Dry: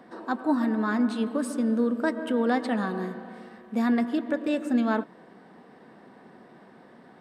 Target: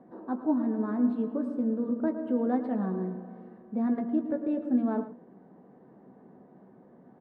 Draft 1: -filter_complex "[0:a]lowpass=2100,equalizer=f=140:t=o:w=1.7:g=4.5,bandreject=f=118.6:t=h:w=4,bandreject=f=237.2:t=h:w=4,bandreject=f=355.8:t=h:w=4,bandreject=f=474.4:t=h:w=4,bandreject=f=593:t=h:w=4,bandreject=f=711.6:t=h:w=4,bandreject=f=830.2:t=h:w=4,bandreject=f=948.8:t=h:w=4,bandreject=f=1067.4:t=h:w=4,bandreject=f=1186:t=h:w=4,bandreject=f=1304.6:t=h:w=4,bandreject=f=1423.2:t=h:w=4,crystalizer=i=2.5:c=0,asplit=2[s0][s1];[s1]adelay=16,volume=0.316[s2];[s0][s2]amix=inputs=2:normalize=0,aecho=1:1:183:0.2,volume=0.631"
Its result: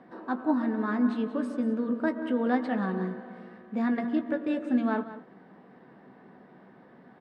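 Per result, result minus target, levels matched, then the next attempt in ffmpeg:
echo 73 ms late; 2 kHz band +12.0 dB
-filter_complex "[0:a]lowpass=2100,equalizer=f=140:t=o:w=1.7:g=4.5,bandreject=f=118.6:t=h:w=4,bandreject=f=237.2:t=h:w=4,bandreject=f=355.8:t=h:w=4,bandreject=f=474.4:t=h:w=4,bandreject=f=593:t=h:w=4,bandreject=f=711.6:t=h:w=4,bandreject=f=830.2:t=h:w=4,bandreject=f=948.8:t=h:w=4,bandreject=f=1067.4:t=h:w=4,bandreject=f=1186:t=h:w=4,bandreject=f=1304.6:t=h:w=4,bandreject=f=1423.2:t=h:w=4,crystalizer=i=2.5:c=0,asplit=2[s0][s1];[s1]adelay=16,volume=0.316[s2];[s0][s2]amix=inputs=2:normalize=0,aecho=1:1:110:0.2,volume=0.631"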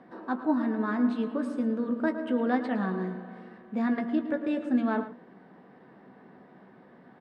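2 kHz band +12.0 dB
-filter_complex "[0:a]lowpass=740,equalizer=f=140:t=o:w=1.7:g=4.5,bandreject=f=118.6:t=h:w=4,bandreject=f=237.2:t=h:w=4,bandreject=f=355.8:t=h:w=4,bandreject=f=474.4:t=h:w=4,bandreject=f=593:t=h:w=4,bandreject=f=711.6:t=h:w=4,bandreject=f=830.2:t=h:w=4,bandreject=f=948.8:t=h:w=4,bandreject=f=1067.4:t=h:w=4,bandreject=f=1186:t=h:w=4,bandreject=f=1304.6:t=h:w=4,bandreject=f=1423.2:t=h:w=4,crystalizer=i=2.5:c=0,asplit=2[s0][s1];[s1]adelay=16,volume=0.316[s2];[s0][s2]amix=inputs=2:normalize=0,aecho=1:1:110:0.2,volume=0.631"

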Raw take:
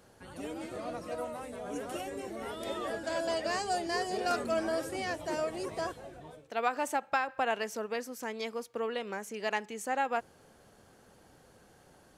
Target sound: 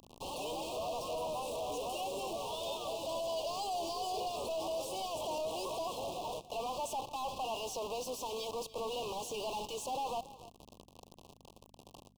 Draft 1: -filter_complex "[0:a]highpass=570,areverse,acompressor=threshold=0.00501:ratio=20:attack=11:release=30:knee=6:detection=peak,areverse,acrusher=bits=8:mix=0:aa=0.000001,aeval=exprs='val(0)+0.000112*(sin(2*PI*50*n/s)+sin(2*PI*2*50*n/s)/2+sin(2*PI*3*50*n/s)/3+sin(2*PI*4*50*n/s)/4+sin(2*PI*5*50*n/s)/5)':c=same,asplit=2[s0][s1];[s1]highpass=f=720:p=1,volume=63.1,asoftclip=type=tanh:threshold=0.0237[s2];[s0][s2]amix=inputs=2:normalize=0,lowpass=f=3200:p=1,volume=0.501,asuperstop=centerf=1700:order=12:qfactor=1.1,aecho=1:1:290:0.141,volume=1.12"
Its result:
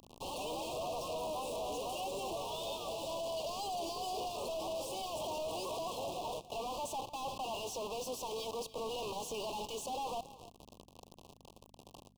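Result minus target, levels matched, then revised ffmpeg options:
compression: peak gain reduction +8.5 dB
-filter_complex "[0:a]highpass=570,areverse,acompressor=threshold=0.0141:ratio=20:attack=11:release=30:knee=6:detection=peak,areverse,acrusher=bits=8:mix=0:aa=0.000001,aeval=exprs='val(0)+0.000112*(sin(2*PI*50*n/s)+sin(2*PI*2*50*n/s)/2+sin(2*PI*3*50*n/s)/3+sin(2*PI*4*50*n/s)/4+sin(2*PI*5*50*n/s)/5)':c=same,asplit=2[s0][s1];[s1]highpass=f=720:p=1,volume=63.1,asoftclip=type=tanh:threshold=0.0237[s2];[s0][s2]amix=inputs=2:normalize=0,lowpass=f=3200:p=1,volume=0.501,asuperstop=centerf=1700:order=12:qfactor=1.1,aecho=1:1:290:0.141,volume=1.12"

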